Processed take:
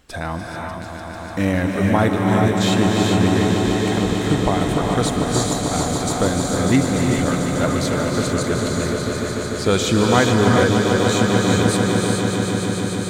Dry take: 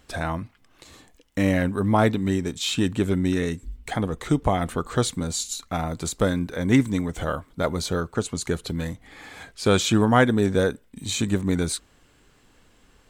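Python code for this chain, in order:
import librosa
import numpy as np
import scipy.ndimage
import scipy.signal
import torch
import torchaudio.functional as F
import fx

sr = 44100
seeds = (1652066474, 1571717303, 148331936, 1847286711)

y = fx.echo_swell(x, sr, ms=148, loudest=5, wet_db=-10.0)
y = fx.rev_gated(y, sr, seeds[0], gate_ms=450, shape='rising', drr_db=1.0)
y = F.gain(torch.from_numpy(y), 1.0).numpy()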